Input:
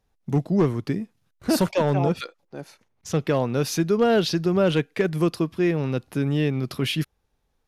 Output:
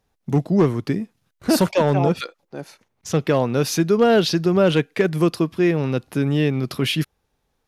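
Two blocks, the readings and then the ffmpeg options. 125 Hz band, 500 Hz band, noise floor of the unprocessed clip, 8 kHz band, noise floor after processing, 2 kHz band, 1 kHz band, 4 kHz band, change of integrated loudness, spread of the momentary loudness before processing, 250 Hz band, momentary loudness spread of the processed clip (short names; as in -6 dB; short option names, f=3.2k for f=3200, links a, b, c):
+3.0 dB, +4.0 dB, -72 dBFS, +4.0 dB, -73 dBFS, +4.0 dB, +4.0 dB, +4.0 dB, +3.5 dB, 13 LU, +3.5 dB, 13 LU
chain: -af "lowshelf=f=60:g=-8,volume=4dB"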